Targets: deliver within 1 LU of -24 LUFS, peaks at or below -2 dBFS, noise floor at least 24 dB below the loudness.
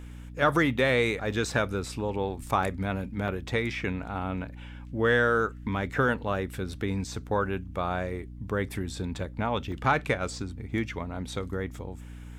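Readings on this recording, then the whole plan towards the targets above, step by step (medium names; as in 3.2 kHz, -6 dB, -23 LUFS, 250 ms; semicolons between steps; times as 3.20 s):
dropouts 5; longest dropout 2.1 ms; hum 60 Hz; highest harmonic 300 Hz; hum level -40 dBFS; loudness -29.0 LUFS; peak level -11.5 dBFS; loudness target -24.0 LUFS
-> interpolate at 0.79/1.52/2.63/3.28/9.72 s, 2.1 ms; hum notches 60/120/180/240/300 Hz; trim +5 dB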